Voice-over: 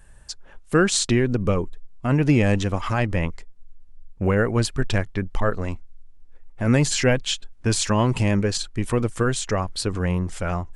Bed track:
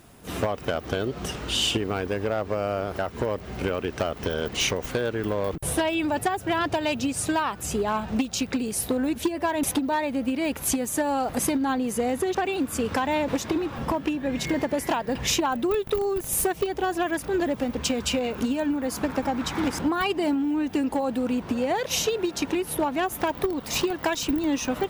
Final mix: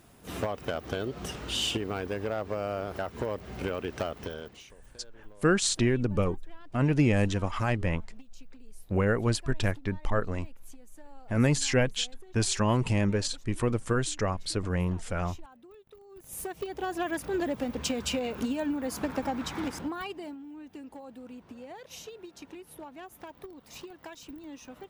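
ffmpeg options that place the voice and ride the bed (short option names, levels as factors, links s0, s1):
-filter_complex "[0:a]adelay=4700,volume=0.531[s0];[1:a]volume=7.94,afade=t=out:st=4.04:d=0.59:silence=0.0707946,afade=t=in:st=16.08:d=1.02:silence=0.0668344,afade=t=out:st=19.3:d=1.08:silence=0.188365[s1];[s0][s1]amix=inputs=2:normalize=0"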